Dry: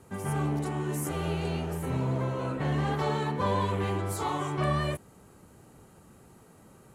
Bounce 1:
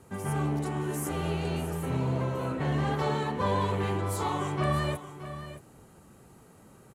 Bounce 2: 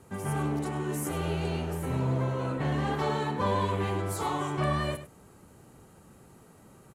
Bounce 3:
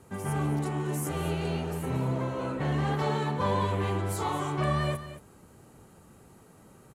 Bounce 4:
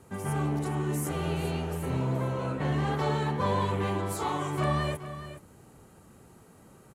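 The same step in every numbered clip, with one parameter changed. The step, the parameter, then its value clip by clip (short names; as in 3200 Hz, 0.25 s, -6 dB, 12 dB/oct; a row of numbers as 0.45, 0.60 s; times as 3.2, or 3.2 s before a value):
echo, time: 624, 99, 226, 423 ms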